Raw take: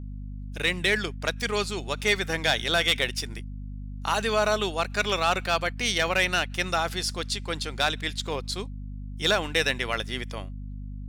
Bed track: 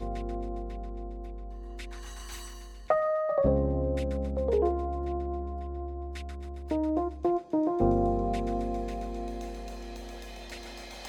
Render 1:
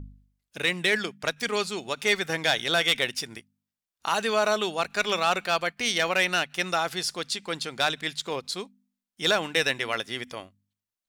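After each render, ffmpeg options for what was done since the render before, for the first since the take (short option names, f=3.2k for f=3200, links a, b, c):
-af "bandreject=f=50:t=h:w=4,bandreject=f=100:t=h:w=4,bandreject=f=150:t=h:w=4,bandreject=f=200:t=h:w=4,bandreject=f=250:t=h:w=4"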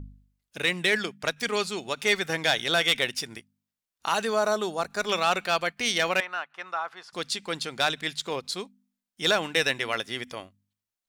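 -filter_complex "[0:a]asettb=1/sr,asplit=3[a][b][c];[a]atrim=end=4.254[d];[b]atrim=start=4.25:end=5.09,asetpts=PTS-STARTPTS,afade=t=in:d=0.004:c=qsin,afade=t=out:st=0.836:d=0.004:c=qsin,equalizer=f=2.7k:t=o:w=0.91:g=-12[e];[c]atrim=start=5.086[f];[d][e]acrossfade=d=0.004:c1=hsin:c2=qsin[g];[g][f]acrossfade=d=0.004:c1=qsin:c2=hsin,asettb=1/sr,asplit=3[h][i][j];[h]atrim=end=6.204[k];[i]atrim=start=6.2:end=7.13,asetpts=PTS-STARTPTS,afade=t=in:d=0.004:c=qsin,afade=t=out:st=0.926:d=0.004:c=qsin,bandpass=f=1.1k:t=q:w=2.3[l];[j]atrim=start=7.126[m];[k][l]acrossfade=d=0.004:c1=hsin:c2=qsin[n];[n][m]acrossfade=d=0.004:c1=qsin:c2=hsin"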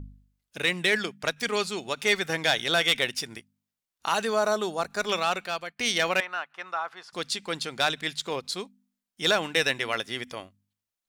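-filter_complex "[0:a]asplit=2[a][b];[a]atrim=end=5.79,asetpts=PTS-STARTPTS,afade=t=out:st=5.06:d=0.73:silence=0.211349[c];[b]atrim=start=5.79,asetpts=PTS-STARTPTS,afade=t=in:d=0.004:c=hsin:silence=0.211349[d];[c][d]concat=n=2:v=0:a=1"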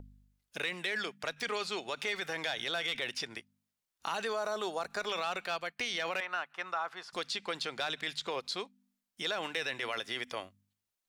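-filter_complex "[0:a]alimiter=limit=-21.5dB:level=0:latency=1:release=23,acrossover=split=390|5400[a][b][c];[a]acompressor=threshold=-52dB:ratio=4[d];[b]acompressor=threshold=-31dB:ratio=4[e];[c]acompressor=threshold=-56dB:ratio=4[f];[d][e][f]amix=inputs=3:normalize=0"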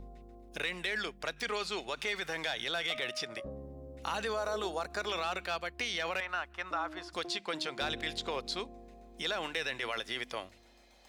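-filter_complex "[1:a]volume=-19dB[a];[0:a][a]amix=inputs=2:normalize=0"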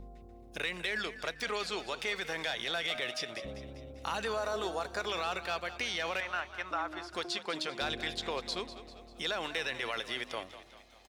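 -filter_complex "[0:a]asplit=6[a][b][c][d][e][f];[b]adelay=197,afreqshift=37,volume=-13.5dB[g];[c]adelay=394,afreqshift=74,volume=-19.3dB[h];[d]adelay=591,afreqshift=111,volume=-25.2dB[i];[e]adelay=788,afreqshift=148,volume=-31dB[j];[f]adelay=985,afreqshift=185,volume=-36.9dB[k];[a][g][h][i][j][k]amix=inputs=6:normalize=0"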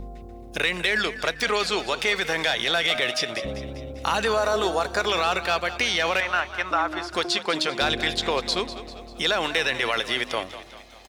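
-af "volume=11.5dB"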